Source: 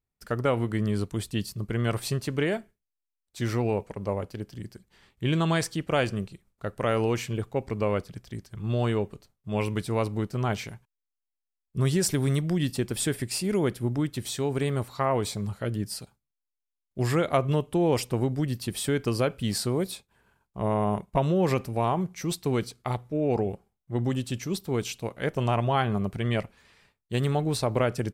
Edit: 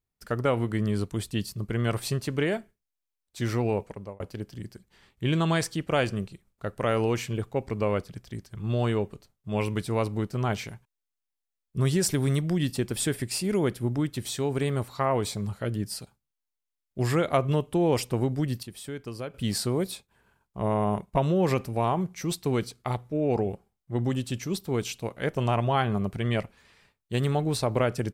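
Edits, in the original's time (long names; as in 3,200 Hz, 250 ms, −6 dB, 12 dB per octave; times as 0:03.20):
0:03.85–0:04.20: fade out
0:18.63–0:19.34: clip gain −10.5 dB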